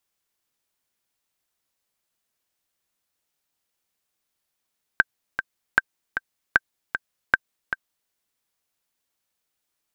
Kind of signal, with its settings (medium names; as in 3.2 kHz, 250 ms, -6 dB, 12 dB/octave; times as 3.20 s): metronome 154 bpm, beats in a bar 2, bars 4, 1.56 kHz, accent 9 dB -2 dBFS